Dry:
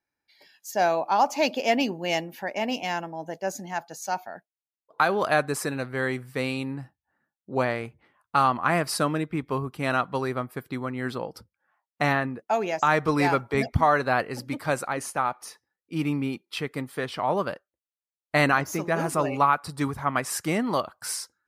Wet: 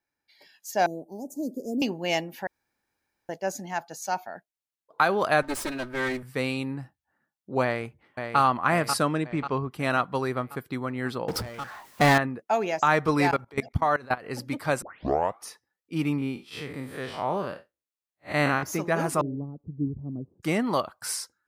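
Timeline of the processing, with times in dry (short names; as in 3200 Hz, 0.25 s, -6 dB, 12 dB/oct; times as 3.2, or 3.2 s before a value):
0.86–1.82 elliptic band-stop 400–8200 Hz, stop band 60 dB
2.47–3.29 room tone
5.42–6.23 minimum comb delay 3.2 ms
7.63–8.39 echo throw 0.54 s, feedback 55%, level -6.5 dB
9.02–9.7 LPF 12000 Hz -> 5100 Hz 24 dB/oct
11.28–12.18 power-law curve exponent 0.5
13.31–14.25 level quantiser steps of 22 dB
14.82 tape start 0.59 s
16.18–18.63 time blur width 0.114 s
19.21–20.43 inverse Chebyshev low-pass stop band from 2000 Hz, stop band 80 dB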